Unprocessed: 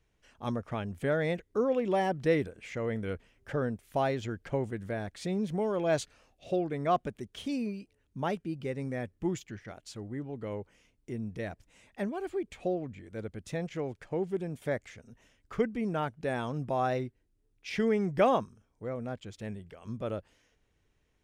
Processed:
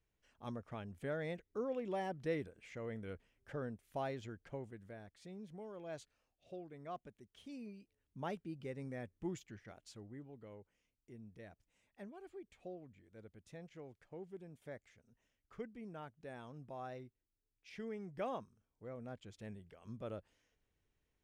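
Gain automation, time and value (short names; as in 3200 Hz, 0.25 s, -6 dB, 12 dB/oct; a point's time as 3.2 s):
4.18 s -11.5 dB
5.2 s -19 dB
7.27 s -19 dB
8.24 s -10 dB
9.87 s -10 dB
10.55 s -17.5 dB
18.06 s -17.5 dB
19.21 s -10 dB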